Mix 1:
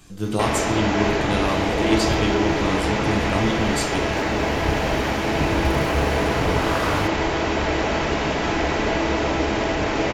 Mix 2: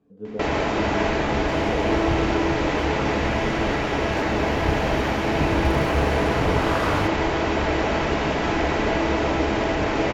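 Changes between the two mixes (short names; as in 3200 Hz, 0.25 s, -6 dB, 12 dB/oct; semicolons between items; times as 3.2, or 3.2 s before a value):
speech: add double band-pass 340 Hz, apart 0.77 oct; master: add high shelf 4400 Hz -6.5 dB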